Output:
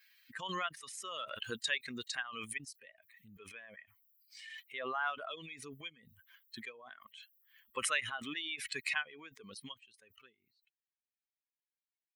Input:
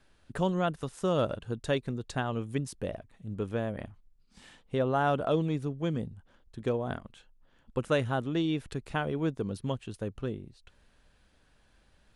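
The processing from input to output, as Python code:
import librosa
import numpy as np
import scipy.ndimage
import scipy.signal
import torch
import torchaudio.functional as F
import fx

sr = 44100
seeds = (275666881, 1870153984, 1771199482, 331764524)

y = fx.bin_expand(x, sr, power=2.0)
y = fx.highpass_res(y, sr, hz=2100.0, q=2.1)
y = fx.high_shelf(y, sr, hz=3800.0, db=-11.5)
y = fx.pre_swell(y, sr, db_per_s=29.0)
y = y * 10.0 ** (5.0 / 20.0)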